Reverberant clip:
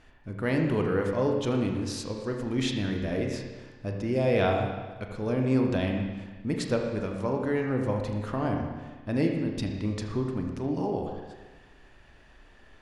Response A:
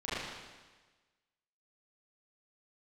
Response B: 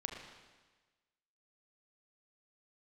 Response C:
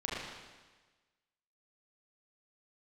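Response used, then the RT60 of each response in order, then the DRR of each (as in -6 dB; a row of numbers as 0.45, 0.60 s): B; 1.3, 1.3, 1.3 s; -12.5, 1.5, -6.0 dB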